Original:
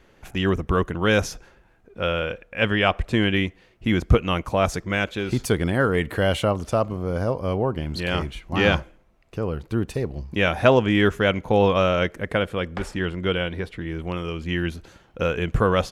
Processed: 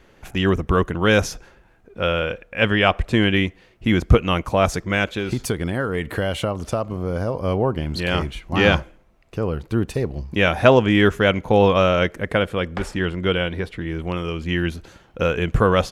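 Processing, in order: 5.10–7.34 s: compression, threshold -22 dBFS, peak gain reduction 7.5 dB; trim +3 dB

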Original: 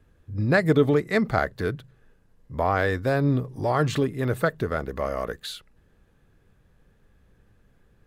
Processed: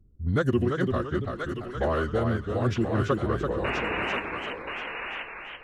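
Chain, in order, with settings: band-stop 1.1 kHz, Q 7; level-controlled noise filter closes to 310 Hz, open at -19 dBFS; in parallel at -0.5 dB: compression, threshold -31 dBFS, peak gain reduction 16.5 dB; on the sum: time stretch by phase-locked vocoder 0.58×; tremolo 0.76 Hz, depth 42%; painted sound noise, 3.02–3.49 s, 210–3500 Hz -28 dBFS; tape speed -17%; on a send: thinning echo 1030 ms, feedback 18%, high-pass 920 Hz, level -3.5 dB; on the sum: modulated delay 338 ms, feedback 41%, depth 129 cents, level -5 dB; trim -2.5 dB

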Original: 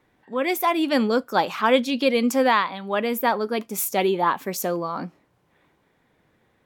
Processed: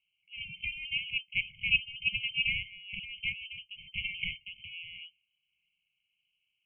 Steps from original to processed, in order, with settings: Chebyshev shaper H 3 -18 dB, 7 -17 dB, 8 -23 dB, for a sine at -6 dBFS; frequency inversion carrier 3.1 kHz; brick-wall FIR band-stop 210–2100 Hz; trim -6 dB

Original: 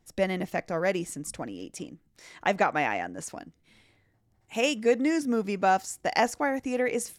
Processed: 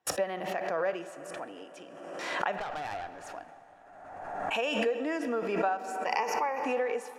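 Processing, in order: high-pass 94 Hz; band-stop 2.1 kHz, Q 5.6; gate -58 dBFS, range -43 dB; three-band isolator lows -21 dB, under 490 Hz, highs -16 dB, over 2.9 kHz; harmonic-percussive split percussive -7 dB; 6.06–6.62 s: rippled EQ curve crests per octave 0.81, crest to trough 17 dB; compression 6:1, threshold -32 dBFS, peak gain reduction 11.5 dB; 2.58–3.27 s: valve stage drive 38 dB, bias 0.6; plate-style reverb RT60 4.5 s, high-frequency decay 0.55×, pre-delay 0 ms, DRR 11 dB; swell ahead of each attack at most 36 dB/s; trim +5 dB

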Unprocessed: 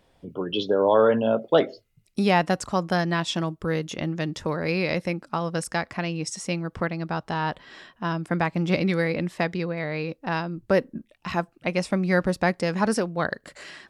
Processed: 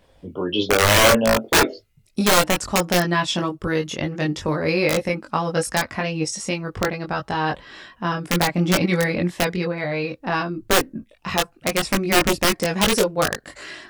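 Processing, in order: integer overflow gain 13 dB; chorus voices 6, 0.15 Hz, delay 21 ms, depth 2.1 ms; trim +8 dB

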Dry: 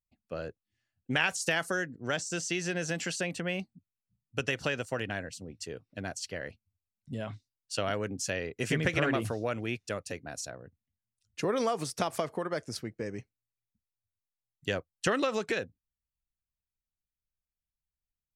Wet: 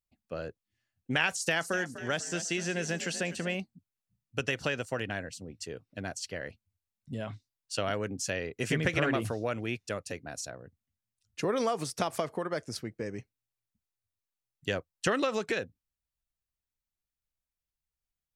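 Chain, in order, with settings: 1.36–3.55 s: frequency-shifting echo 248 ms, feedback 43%, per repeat +41 Hz, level -13 dB

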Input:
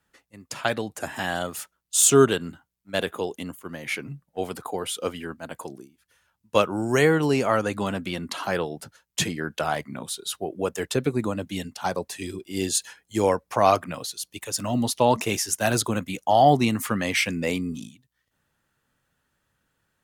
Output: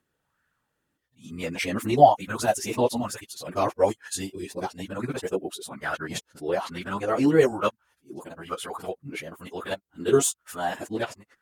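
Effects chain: reverse the whole clip; plain phase-vocoder stretch 0.57×; sweeping bell 1.1 Hz 300–1600 Hz +11 dB; trim -2.5 dB

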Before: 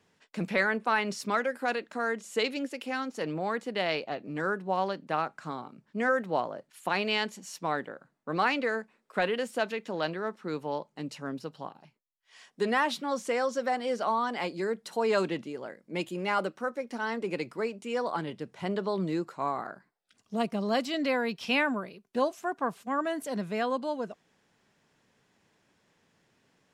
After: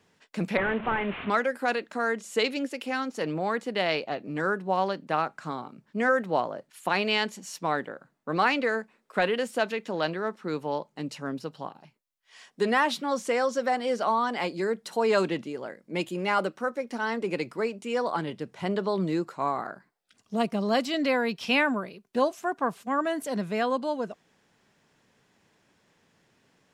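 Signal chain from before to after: 0.57–1.30 s: one-bit delta coder 16 kbps, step -34 dBFS; trim +3 dB

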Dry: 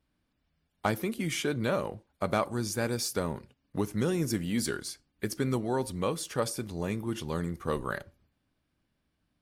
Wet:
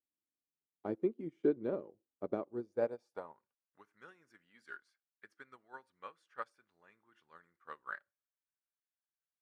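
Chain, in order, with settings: band-pass sweep 360 Hz -> 1.5 kHz, 2.47–3.74 s; upward expansion 2.5:1, over -47 dBFS; trim +5.5 dB

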